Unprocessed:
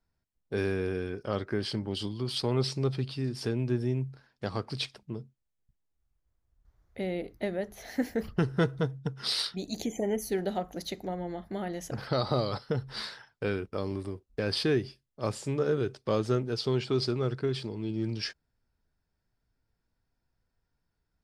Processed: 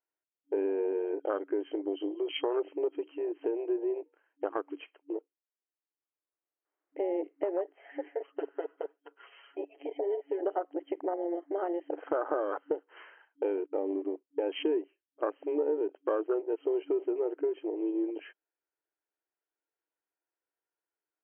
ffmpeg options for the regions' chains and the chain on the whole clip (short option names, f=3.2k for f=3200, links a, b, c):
-filter_complex "[0:a]asettb=1/sr,asplit=3[a][b][c];[a]atrim=end=7.794[d];[b]atrim=start=7.79:end=10.41,asetpts=PTS-STARTPTS,afade=t=in:d=0.004:c=qsin,afade=t=out:st=2.616:d=0.004:c=qsin,highpass=460,acompressor=threshold=-35dB:ratio=6:attack=3.2:release=140:knee=1:detection=peak,aecho=1:1:7.2:0.8,atrim=end_sample=115542[e];[c]atrim=start=10.406[f];[d][e]acrossfade=d=0.004:c1=hsin:c2=qsin[g];[g][f]acrossfade=d=0.004:c1=qsin:c2=hsin,afwtdn=0.0224,afftfilt=real='re*between(b*sr/4096,280,3200)':imag='im*between(b*sr/4096,280,3200)':win_size=4096:overlap=0.75,acompressor=threshold=-37dB:ratio=3,volume=8dB"